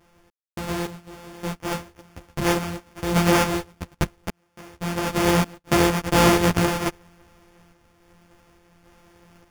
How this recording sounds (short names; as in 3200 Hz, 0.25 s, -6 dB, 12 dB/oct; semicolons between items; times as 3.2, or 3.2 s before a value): a buzz of ramps at a fixed pitch in blocks of 256 samples; random-step tremolo, depth 100%; aliases and images of a low sample rate 4000 Hz, jitter 0%; a shimmering, thickened sound